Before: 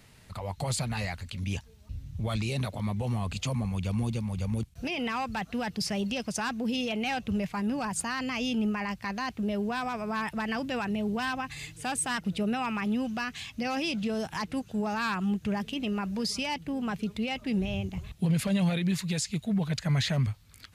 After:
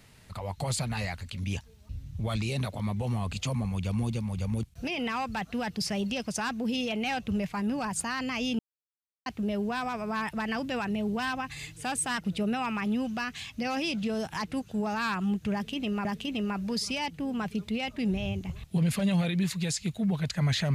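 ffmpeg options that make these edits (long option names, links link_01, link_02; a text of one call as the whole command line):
ffmpeg -i in.wav -filter_complex "[0:a]asplit=4[link_01][link_02][link_03][link_04];[link_01]atrim=end=8.59,asetpts=PTS-STARTPTS,afade=type=out:start_time=8.586:duration=0.004:curve=hsin[link_05];[link_02]atrim=start=8.59:end=9.26,asetpts=PTS-STARTPTS,volume=0[link_06];[link_03]atrim=start=9.26:end=16.052,asetpts=PTS-STARTPTS,afade=type=in:duration=0.004:curve=hsin[link_07];[link_04]atrim=start=15.528[link_08];[link_05][link_06][link_07]concat=n=3:v=0:a=1[link_09];[link_09][link_08]acrossfade=duration=0.004:curve1=hsin:curve2=hsin" out.wav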